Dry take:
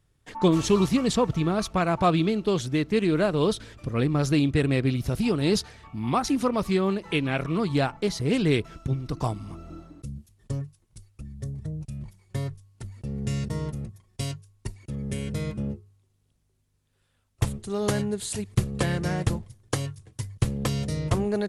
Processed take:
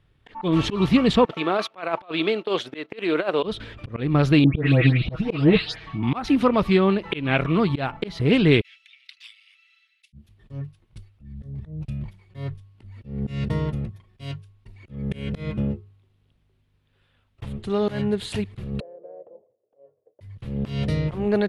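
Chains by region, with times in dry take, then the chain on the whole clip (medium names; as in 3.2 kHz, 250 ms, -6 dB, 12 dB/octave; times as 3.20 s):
1.25–3.43 s: gate -33 dBFS, range -14 dB + Chebyshev high-pass 490 Hz + compressor with a negative ratio -27 dBFS, ratio -0.5
4.44–6.03 s: distance through air 78 m + comb 6.3 ms, depth 74% + phase dispersion highs, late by 148 ms, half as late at 2.1 kHz
8.61–10.13 s: steep high-pass 2 kHz 48 dB/octave + treble shelf 6.3 kHz -6 dB
18.80–20.21 s: compression, threshold -33 dBFS + Butterworth band-pass 530 Hz, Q 3
whole clip: resonant high shelf 4.7 kHz -13.5 dB, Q 1.5; slow attack 186 ms; trim +5.5 dB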